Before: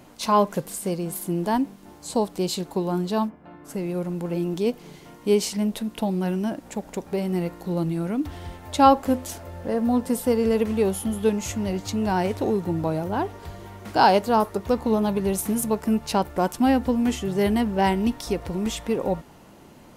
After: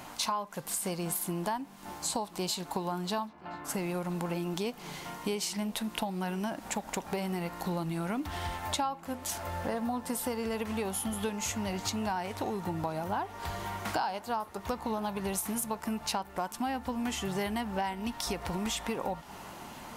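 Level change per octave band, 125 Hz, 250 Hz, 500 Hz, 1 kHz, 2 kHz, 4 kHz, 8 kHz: −9.0, −11.5, −12.5, −9.5, −5.0, −3.0, −1.5 decibels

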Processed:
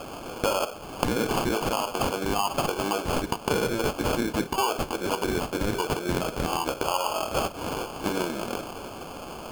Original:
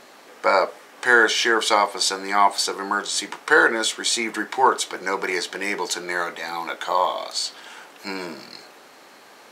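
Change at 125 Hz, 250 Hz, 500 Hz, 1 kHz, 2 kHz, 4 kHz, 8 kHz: +14.5, +2.0, −3.0, −6.5, −13.0, −7.5, −8.0 decibels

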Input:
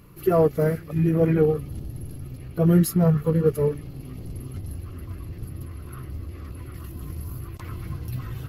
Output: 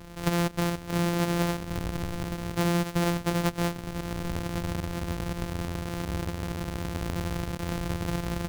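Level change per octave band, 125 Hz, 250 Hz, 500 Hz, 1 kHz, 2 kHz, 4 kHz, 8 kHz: −5.5 dB, −4.0 dB, −9.0 dB, +3.0 dB, +7.5 dB, can't be measured, +2.0 dB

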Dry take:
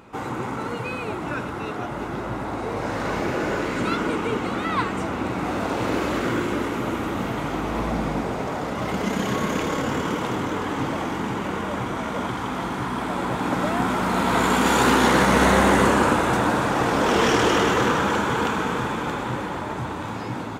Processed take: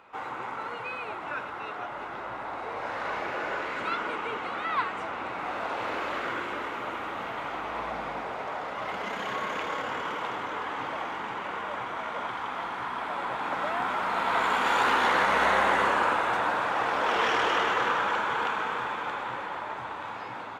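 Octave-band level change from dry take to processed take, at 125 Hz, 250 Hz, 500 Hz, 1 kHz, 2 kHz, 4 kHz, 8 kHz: −20.0, −17.5, −9.0, −3.5, −3.0, −6.0, −15.0 decibels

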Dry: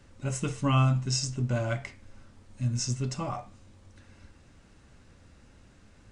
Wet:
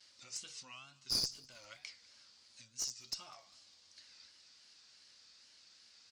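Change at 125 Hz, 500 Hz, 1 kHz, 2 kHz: −35.5, −24.5, −23.0, −15.5 decibels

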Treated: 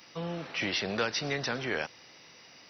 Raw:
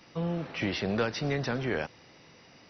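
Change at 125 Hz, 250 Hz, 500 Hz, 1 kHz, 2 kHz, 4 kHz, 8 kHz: −7.0 dB, −5.0 dB, −2.5 dB, 0.0 dB, +2.5 dB, +4.5 dB, can't be measured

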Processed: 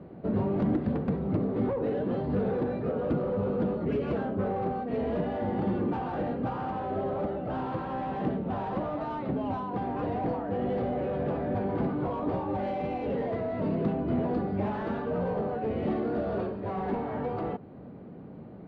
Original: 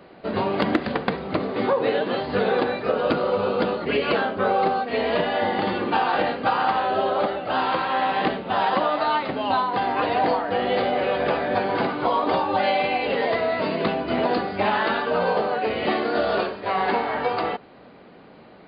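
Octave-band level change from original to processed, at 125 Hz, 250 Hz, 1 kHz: +3.5, −1.5, −12.5 decibels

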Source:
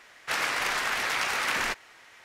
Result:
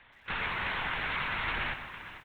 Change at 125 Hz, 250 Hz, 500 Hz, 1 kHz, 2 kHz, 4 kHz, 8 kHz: +7.5 dB, −1.5 dB, −6.5 dB, −4.5 dB, −4.5 dB, −7.0 dB, below −30 dB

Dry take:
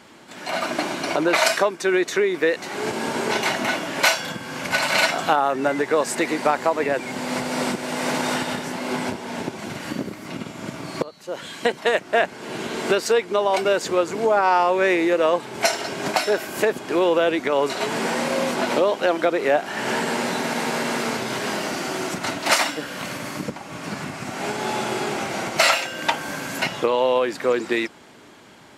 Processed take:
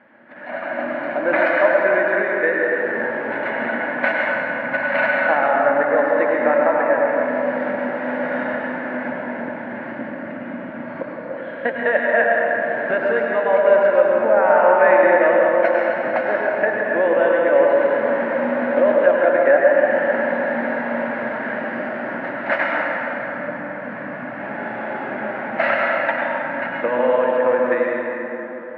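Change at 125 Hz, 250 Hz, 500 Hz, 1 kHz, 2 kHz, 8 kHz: can't be measured, 0.0 dB, +5.5 dB, +2.0 dB, +5.0 dB, below −40 dB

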